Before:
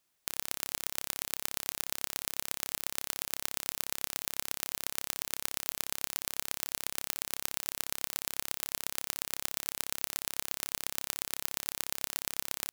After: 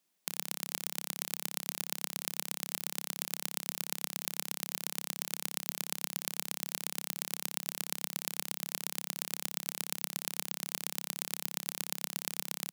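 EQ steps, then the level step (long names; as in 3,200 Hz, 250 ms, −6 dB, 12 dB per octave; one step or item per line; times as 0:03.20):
low shelf with overshoot 130 Hz −10.5 dB, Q 3
parametric band 1,400 Hz −3.5 dB 0.73 octaves
−1.5 dB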